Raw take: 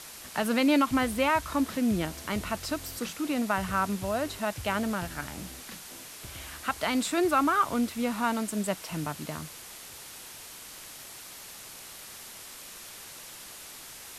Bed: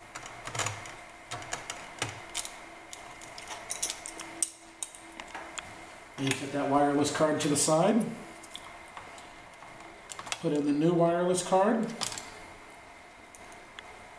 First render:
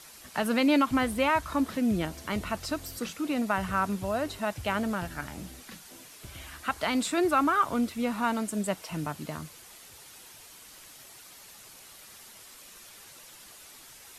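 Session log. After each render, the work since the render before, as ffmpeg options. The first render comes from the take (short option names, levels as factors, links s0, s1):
-af "afftdn=nr=7:nf=-46"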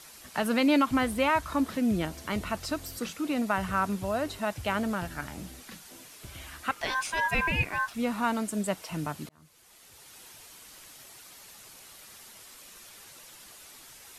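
-filter_complex "[0:a]asettb=1/sr,asplit=3[s0][s1][s2];[s0]atrim=end=6.714[s3];[s1]atrim=start=6.71:end=7.94,asetpts=PTS-STARTPTS,afade=t=in:d=0.004:c=qsin,afade=t=out:st=1.226:d=0.004:c=qsin,aeval=exprs='val(0)*sin(2*PI*1300*n/s)':c=same[s4];[s2]atrim=start=7.936[s5];[s3][s4]acrossfade=d=0.004:c1=hsin:c2=qsin[s6];[s6][s5]acrossfade=d=0.004:c1=qsin:c2=hsin,asplit=2[s7][s8];[s7]atrim=end=9.29,asetpts=PTS-STARTPTS,afade=t=out:st=9.286:d=0.004:c=hsin[s9];[s8]atrim=start=9.29,asetpts=PTS-STARTPTS,afade=t=in:d=0.95[s10];[s9][s10]concat=n=2:v=0:a=1"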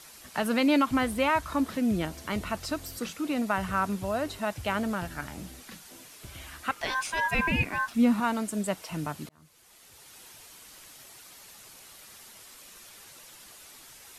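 -filter_complex "[0:a]asettb=1/sr,asplit=3[s0][s1][s2];[s0]atrim=end=7.394[s3];[s1]atrim=start=7.39:end=8.2,asetpts=PTS-STARTPTS,afade=t=in:d=0.004:c=qsin,afade=t=out:st=0.806:d=0.004:c=qsin,equalizer=f=240:w=2.2:g=9.5[s4];[s2]atrim=start=8.196[s5];[s3][s4]acrossfade=d=0.004:c1=hsin:c2=qsin[s6];[s6][s5]acrossfade=d=0.004:c1=qsin:c2=hsin"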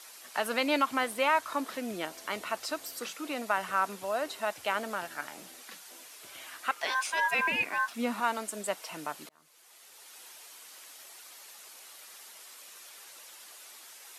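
-af "highpass=470"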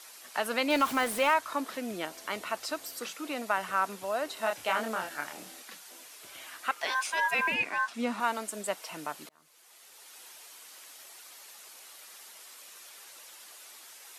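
-filter_complex "[0:a]asettb=1/sr,asplit=3[s0][s1][s2];[s0]atrim=end=0.704[s3];[s1]atrim=start=0.7:end=1.34,asetpts=PTS-STARTPTS,afade=t=in:d=0.004:c=qsin,afade=t=out:st=0.636:d=0.004:c=qsin,aeval=exprs='val(0)+0.5*0.0188*sgn(val(0))':c=same[s4];[s2]atrim=start=1.336[s5];[s3][s4]acrossfade=d=0.004:c1=hsin:c2=qsin[s6];[s6][s5]acrossfade=d=0.004:c1=qsin:c2=hsin,asettb=1/sr,asplit=3[s7][s8][s9];[s7]atrim=end=4.344[s10];[s8]atrim=start=4.34:end=5.62,asetpts=PTS-STARTPTS,afade=t=in:d=0.004:c=qsin,afade=t=out:st=1.276:d=0.004:c=qsin,asplit=2[s11][s12];[s12]adelay=27,volume=0.708[s13];[s11][s13]amix=inputs=2:normalize=0,atrim=end_sample=56448[s14];[s9]atrim=start=5.616[s15];[s10][s14]acrossfade=d=0.004:c1=hsin:c2=qsin[s16];[s16][s15]acrossfade=d=0.004:c1=qsin:c2=hsin,asettb=1/sr,asplit=3[s17][s18][s19];[s17]atrim=end=7.544[s20];[s18]atrim=start=7.54:end=8.2,asetpts=PTS-STARTPTS,afade=t=in:d=0.004:c=qsin,afade=t=out:st=0.656:d=0.004:c=qsin,lowpass=8800[s21];[s19]atrim=start=8.196[s22];[s20][s21]acrossfade=d=0.004:c1=hsin:c2=qsin[s23];[s23][s22]acrossfade=d=0.004:c1=qsin:c2=hsin"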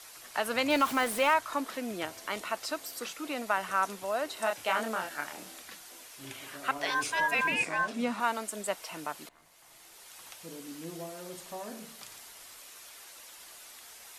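-filter_complex "[1:a]volume=0.141[s0];[0:a][s0]amix=inputs=2:normalize=0"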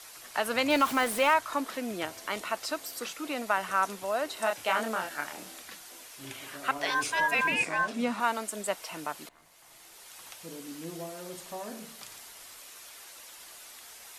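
-af "volume=1.19"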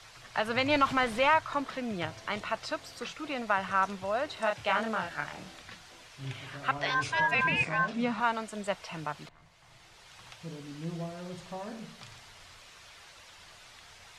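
-af "lowpass=4600,lowshelf=f=190:t=q:w=1.5:g=11"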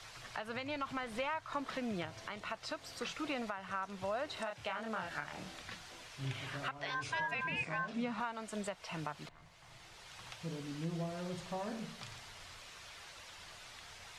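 -af "acompressor=threshold=0.02:ratio=6,alimiter=level_in=1.26:limit=0.0631:level=0:latency=1:release=478,volume=0.794"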